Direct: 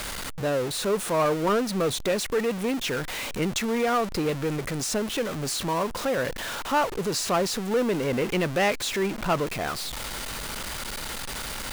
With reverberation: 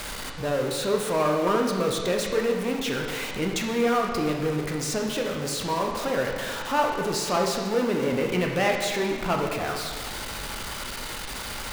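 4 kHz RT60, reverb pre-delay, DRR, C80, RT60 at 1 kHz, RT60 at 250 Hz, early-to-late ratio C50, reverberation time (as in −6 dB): 1.4 s, 15 ms, 1.0 dB, 5.0 dB, 1.7 s, 1.5 s, 3.0 dB, 1.7 s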